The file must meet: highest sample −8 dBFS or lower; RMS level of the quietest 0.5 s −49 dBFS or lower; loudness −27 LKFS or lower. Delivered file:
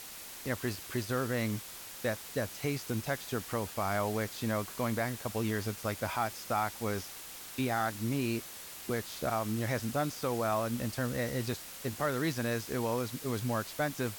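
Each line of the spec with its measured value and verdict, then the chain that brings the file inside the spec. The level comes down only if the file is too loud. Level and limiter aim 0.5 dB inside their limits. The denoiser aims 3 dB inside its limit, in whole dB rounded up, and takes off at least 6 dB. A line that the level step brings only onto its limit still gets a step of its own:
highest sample −19.5 dBFS: in spec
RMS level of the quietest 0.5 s −46 dBFS: out of spec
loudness −34.5 LKFS: in spec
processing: broadband denoise 6 dB, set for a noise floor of −46 dBFS

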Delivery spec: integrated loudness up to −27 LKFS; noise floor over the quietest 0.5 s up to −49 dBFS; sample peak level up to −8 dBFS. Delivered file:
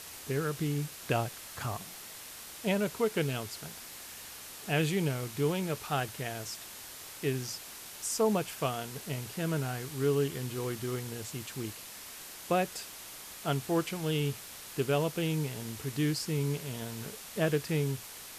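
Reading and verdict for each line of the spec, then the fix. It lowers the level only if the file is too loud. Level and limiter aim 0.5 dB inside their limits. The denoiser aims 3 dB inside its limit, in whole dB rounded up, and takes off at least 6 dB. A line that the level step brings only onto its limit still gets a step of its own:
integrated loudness −34.0 LKFS: in spec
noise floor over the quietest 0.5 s −46 dBFS: out of spec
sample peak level −16.5 dBFS: in spec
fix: broadband denoise 6 dB, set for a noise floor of −46 dBFS

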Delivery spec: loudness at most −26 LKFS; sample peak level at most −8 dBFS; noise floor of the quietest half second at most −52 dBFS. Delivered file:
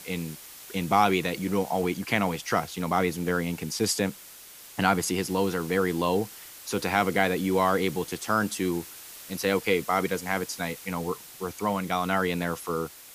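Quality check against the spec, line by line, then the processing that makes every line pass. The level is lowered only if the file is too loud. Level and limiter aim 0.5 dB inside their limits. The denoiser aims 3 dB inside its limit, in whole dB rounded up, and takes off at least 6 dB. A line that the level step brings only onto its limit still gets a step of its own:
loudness −27.5 LKFS: in spec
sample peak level −7.0 dBFS: out of spec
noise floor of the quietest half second −47 dBFS: out of spec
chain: broadband denoise 8 dB, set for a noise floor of −47 dBFS
brickwall limiter −8.5 dBFS

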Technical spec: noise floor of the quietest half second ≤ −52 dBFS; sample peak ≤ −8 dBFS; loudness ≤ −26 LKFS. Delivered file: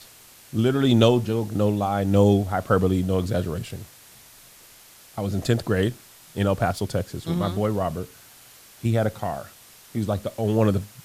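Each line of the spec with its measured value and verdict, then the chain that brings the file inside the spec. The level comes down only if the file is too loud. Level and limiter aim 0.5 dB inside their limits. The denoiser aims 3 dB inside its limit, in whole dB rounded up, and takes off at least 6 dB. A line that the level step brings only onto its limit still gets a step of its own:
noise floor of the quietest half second −50 dBFS: out of spec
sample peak −5.0 dBFS: out of spec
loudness −23.5 LKFS: out of spec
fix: level −3 dB
brickwall limiter −8.5 dBFS

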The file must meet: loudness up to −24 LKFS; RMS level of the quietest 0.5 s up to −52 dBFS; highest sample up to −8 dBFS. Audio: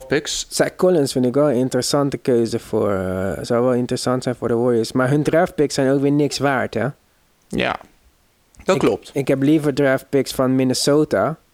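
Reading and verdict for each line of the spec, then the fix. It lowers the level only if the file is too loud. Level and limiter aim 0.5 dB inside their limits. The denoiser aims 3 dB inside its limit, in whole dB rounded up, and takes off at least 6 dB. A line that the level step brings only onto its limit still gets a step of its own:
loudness −19.0 LKFS: out of spec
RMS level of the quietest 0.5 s −58 dBFS: in spec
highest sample −5.0 dBFS: out of spec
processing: level −5.5 dB

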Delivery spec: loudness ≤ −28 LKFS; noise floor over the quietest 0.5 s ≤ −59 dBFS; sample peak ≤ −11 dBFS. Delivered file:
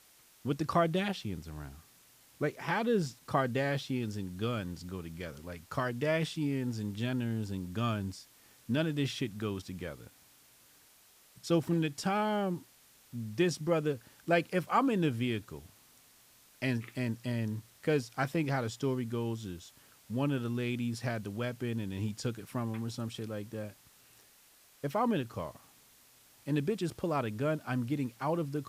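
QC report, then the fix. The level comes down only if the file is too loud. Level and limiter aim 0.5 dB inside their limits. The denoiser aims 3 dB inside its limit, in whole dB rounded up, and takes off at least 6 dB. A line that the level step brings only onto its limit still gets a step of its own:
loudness −34.0 LKFS: in spec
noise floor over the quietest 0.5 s −62 dBFS: in spec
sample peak −15.0 dBFS: in spec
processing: no processing needed

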